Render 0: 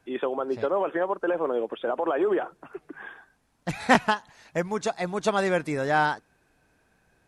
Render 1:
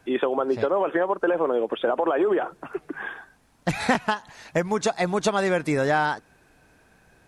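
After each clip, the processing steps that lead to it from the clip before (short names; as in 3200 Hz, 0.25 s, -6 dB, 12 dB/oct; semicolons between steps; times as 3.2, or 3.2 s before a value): compressor 5:1, threshold -27 dBFS, peak gain reduction 13.5 dB; gain +8 dB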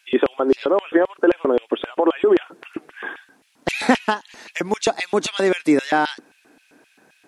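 LFO high-pass square 3.8 Hz 280–2700 Hz; gain +3 dB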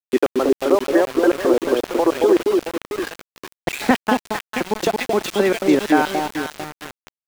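air absorption 65 m; echo with dull and thin repeats by turns 0.224 s, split 960 Hz, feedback 66%, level -3 dB; sample gate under -25 dBFS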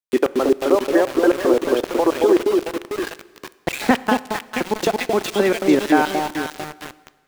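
plate-style reverb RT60 1.6 s, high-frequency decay 0.9×, DRR 17.5 dB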